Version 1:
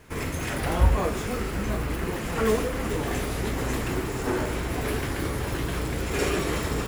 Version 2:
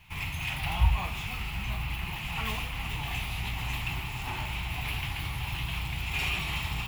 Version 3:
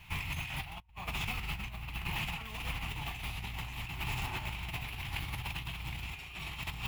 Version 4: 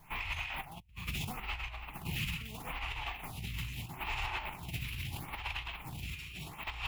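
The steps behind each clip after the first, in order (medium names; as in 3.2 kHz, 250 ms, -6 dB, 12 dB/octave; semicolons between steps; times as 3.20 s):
FFT filter 150 Hz 0 dB, 240 Hz -14 dB, 510 Hz -23 dB, 820 Hz +2 dB, 1.6 kHz -9 dB, 2.6 kHz +11 dB, 5.3 kHz -4 dB, 8.7 kHz -8 dB, 14 kHz +2 dB; trim -3.5 dB
compressor with a negative ratio -36 dBFS, ratio -0.5; trim -2.5 dB
lamp-driven phase shifter 0.77 Hz; trim +3 dB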